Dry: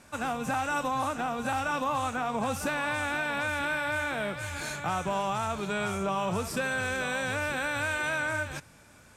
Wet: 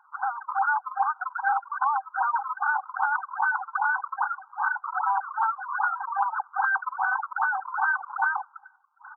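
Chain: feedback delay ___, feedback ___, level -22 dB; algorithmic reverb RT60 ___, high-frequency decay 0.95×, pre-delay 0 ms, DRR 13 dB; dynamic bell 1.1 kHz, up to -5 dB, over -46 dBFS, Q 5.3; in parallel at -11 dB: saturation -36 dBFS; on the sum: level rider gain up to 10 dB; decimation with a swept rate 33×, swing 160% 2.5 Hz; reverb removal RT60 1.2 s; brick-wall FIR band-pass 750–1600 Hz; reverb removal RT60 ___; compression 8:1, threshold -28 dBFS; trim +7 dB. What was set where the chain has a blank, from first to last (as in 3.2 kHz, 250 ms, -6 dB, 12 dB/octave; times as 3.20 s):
273 ms, 42%, 0.63 s, 1 s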